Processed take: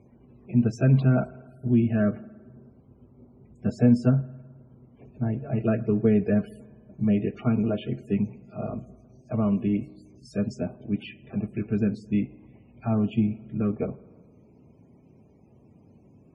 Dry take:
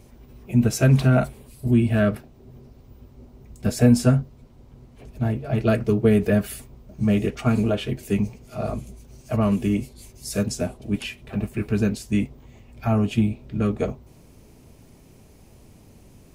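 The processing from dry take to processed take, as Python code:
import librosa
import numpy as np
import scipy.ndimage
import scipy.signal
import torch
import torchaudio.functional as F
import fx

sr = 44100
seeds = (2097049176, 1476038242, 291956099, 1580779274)

y = scipy.signal.sosfilt(scipy.signal.butter(2, 140.0, 'highpass', fs=sr, output='sos'), x)
y = fx.low_shelf(y, sr, hz=390.0, db=9.5)
y = fx.rev_spring(y, sr, rt60_s=1.5, pass_ms=(52,), chirp_ms=45, drr_db=18.5)
y = fx.spec_topn(y, sr, count=64)
y = scipy.signal.sosfilt(scipy.signal.butter(2, 4700.0, 'lowpass', fs=sr, output='sos'), y)
y = y * librosa.db_to_amplitude(-8.5)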